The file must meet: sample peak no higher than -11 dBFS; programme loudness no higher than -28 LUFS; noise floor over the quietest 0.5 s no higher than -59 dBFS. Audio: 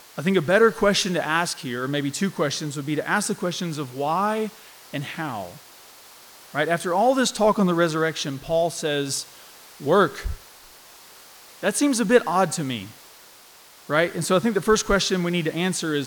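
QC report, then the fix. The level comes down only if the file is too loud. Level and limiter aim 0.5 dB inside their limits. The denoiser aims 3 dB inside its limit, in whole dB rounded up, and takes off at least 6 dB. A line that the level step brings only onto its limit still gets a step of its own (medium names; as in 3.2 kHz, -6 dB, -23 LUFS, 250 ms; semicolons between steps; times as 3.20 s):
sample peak -3.0 dBFS: fail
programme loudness -22.5 LUFS: fail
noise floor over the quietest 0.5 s -49 dBFS: fail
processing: noise reduction 7 dB, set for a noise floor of -49 dBFS; trim -6 dB; peak limiter -11.5 dBFS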